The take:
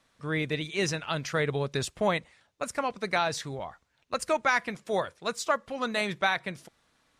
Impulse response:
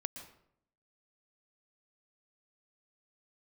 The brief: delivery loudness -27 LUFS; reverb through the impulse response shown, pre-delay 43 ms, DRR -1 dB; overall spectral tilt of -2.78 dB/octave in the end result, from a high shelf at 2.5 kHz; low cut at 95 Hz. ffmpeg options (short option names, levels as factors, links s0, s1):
-filter_complex "[0:a]highpass=95,highshelf=f=2500:g=8,asplit=2[s0][s1];[1:a]atrim=start_sample=2205,adelay=43[s2];[s1][s2]afir=irnorm=-1:irlink=0,volume=1.26[s3];[s0][s3]amix=inputs=2:normalize=0,volume=0.708"